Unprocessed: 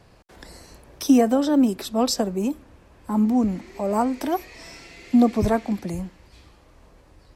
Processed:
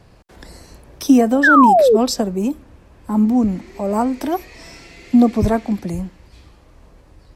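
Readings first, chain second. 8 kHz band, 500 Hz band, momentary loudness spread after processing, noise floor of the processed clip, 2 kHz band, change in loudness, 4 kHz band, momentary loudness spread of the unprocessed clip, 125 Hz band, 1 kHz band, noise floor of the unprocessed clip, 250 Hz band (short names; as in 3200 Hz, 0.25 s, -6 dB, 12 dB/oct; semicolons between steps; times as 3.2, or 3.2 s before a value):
+2.0 dB, +7.0 dB, 16 LU, -49 dBFS, +18.5 dB, +6.5 dB, +2.0 dB, 15 LU, +5.5 dB, +10.5 dB, -54 dBFS, +4.5 dB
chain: low shelf 280 Hz +4.5 dB; painted sound fall, 1.43–1.97, 390–1800 Hz -13 dBFS; gain +2 dB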